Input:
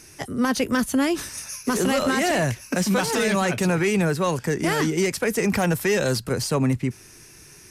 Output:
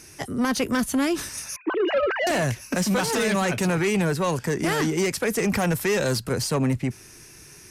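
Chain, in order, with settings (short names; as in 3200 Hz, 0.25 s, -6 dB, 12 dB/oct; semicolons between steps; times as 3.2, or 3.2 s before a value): 1.56–2.27 sine-wave speech; added harmonics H 5 -15 dB, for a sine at -8 dBFS; gain -5 dB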